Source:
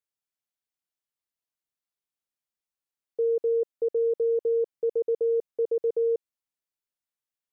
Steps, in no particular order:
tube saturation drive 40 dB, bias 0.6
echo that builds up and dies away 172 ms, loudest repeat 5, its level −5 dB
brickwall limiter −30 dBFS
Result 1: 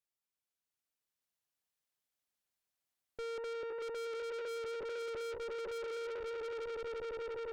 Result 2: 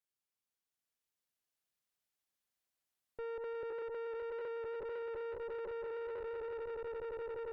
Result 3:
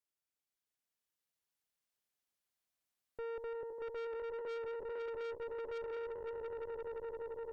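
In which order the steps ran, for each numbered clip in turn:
echo that builds up and dies away, then tube saturation, then brickwall limiter
echo that builds up and dies away, then brickwall limiter, then tube saturation
brickwall limiter, then echo that builds up and dies away, then tube saturation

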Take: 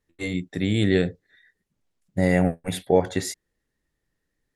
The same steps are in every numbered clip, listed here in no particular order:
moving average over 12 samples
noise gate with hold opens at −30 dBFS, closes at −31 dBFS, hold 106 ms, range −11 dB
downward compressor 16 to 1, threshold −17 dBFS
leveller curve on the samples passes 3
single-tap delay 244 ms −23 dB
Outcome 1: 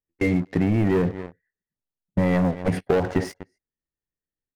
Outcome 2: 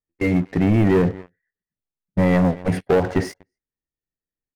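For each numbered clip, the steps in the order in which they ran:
moving average, then noise gate with hold, then single-tap delay, then leveller curve on the samples, then downward compressor
moving average, then downward compressor, then single-tap delay, then noise gate with hold, then leveller curve on the samples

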